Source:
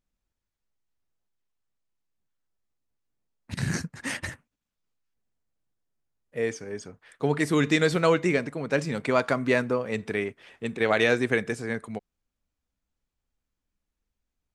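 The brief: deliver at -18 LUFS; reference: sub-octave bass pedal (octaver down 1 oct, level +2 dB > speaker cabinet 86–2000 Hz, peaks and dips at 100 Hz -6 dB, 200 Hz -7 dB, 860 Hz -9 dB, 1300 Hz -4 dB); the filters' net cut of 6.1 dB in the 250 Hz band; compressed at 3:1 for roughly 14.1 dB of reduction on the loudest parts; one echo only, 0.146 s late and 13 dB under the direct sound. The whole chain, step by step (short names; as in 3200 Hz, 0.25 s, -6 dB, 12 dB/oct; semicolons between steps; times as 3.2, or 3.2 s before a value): bell 250 Hz -6.5 dB; compressor 3:1, threshold -38 dBFS; echo 0.146 s -13 dB; octaver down 1 oct, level +2 dB; speaker cabinet 86–2000 Hz, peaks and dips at 100 Hz -6 dB, 200 Hz -7 dB, 860 Hz -9 dB, 1300 Hz -4 dB; gain +23 dB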